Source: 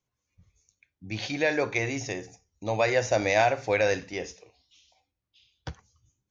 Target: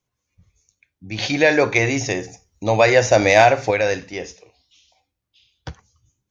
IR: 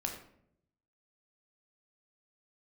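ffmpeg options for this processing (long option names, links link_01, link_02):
-filter_complex "[0:a]asettb=1/sr,asplit=3[link_01][link_02][link_03];[link_01]atrim=end=1.184[link_04];[link_02]atrim=start=1.18:end=3.71,asetpts=PTS-STARTPTS,afade=type=in:duration=0.004:curve=qsin,afade=type=out:start_time=2.526:duration=0.004:curve=qsin,acontrast=49[link_05];[link_03]atrim=start=3.706[link_06];[link_04][link_05]acrossfade=duration=0.004:curve1=hsin:curve2=qsin[link_07];[link_07][link_06]acrossfade=duration=0.004:curve1=qsin:curve2=hsin,volume=4.5dB"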